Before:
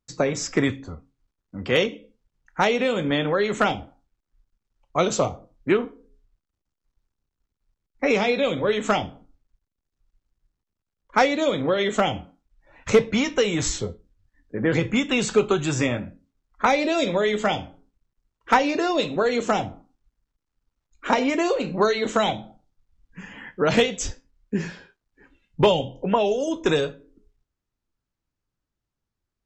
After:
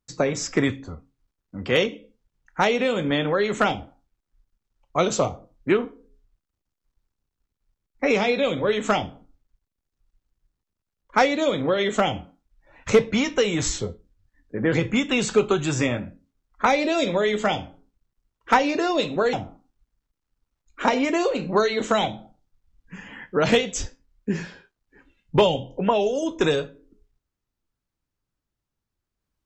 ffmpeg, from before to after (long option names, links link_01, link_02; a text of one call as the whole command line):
ffmpeg -i in.wav -filter_complex "[0:a]asplit=2[link_01][link_02];[link_01]atrim=end=19.332[link_03];[link_02]atrim=start=19.578[link_04];[link_03][link_04]acrossfade=duration=0.004:curve1=hsin:curve2=hsin" out.wav